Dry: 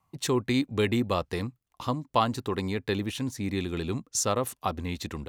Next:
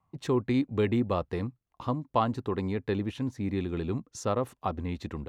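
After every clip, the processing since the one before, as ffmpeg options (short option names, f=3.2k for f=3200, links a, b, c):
-af "lowpass=f=1.2k:p=1"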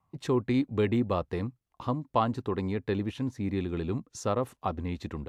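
-ar 32000 -c:a aac -b:a 96k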